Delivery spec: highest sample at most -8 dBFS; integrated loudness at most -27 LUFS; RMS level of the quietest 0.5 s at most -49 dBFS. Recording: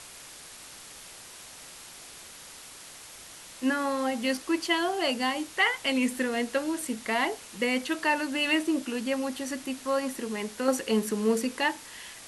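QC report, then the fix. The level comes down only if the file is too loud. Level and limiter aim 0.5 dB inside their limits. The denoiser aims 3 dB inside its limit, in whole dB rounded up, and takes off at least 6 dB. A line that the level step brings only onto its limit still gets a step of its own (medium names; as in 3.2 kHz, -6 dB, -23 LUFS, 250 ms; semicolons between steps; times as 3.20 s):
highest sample -12.5 dBFS: pass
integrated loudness -28.5 LUFS: pass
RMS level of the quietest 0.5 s -47 dBFS: fail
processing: noise reduction 6 dB, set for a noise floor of -47 dBFS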